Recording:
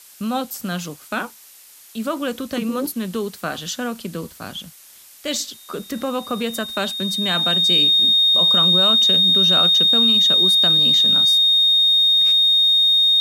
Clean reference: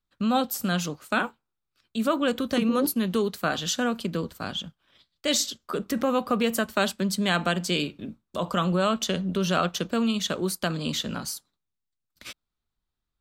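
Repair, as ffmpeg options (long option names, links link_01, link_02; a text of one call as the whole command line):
ffmpeg -i in.wav -af "bandreject=frequency=3700:width=30,afftdn=noise_reduction=30:noise_floor=-45" out.wav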